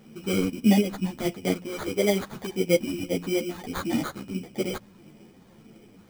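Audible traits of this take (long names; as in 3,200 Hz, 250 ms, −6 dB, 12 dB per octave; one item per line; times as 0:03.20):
phaser sweep stages 2, 1.6 Hz, lowest notch 670–2,700 Hz
aliases and images of a low sample rate 2,700 Hz, jitter 0%
a shimmering, thickened sound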